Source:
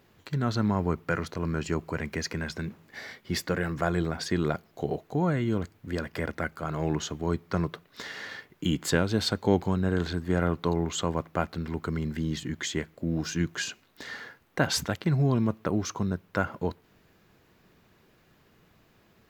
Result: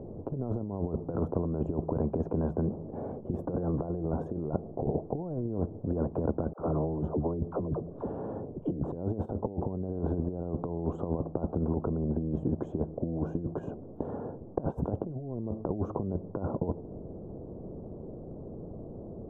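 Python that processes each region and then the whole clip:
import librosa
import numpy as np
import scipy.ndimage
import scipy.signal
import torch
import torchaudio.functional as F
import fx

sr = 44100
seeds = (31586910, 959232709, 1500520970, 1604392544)

y = fx.chain(x, sr, fx.air_absorb(metres=140.0),
    fx.dispersion(late='lows', ms=70.0, hz=430.0), at=(6.53, 8.91))
y = fx.over_compress(y, sr, threshold_db=-32.0, ratio=-0.5)
y = scipy.signal.sosfilt(scipy.signal.cheby2(4, 60, 1800.0, 'lowpass', fs=sr, output='sos'), y)
y = fx.spectral_comp(y, sr, ratio=2.0)
y = y * 10.0 ** (5.5 / 20.0)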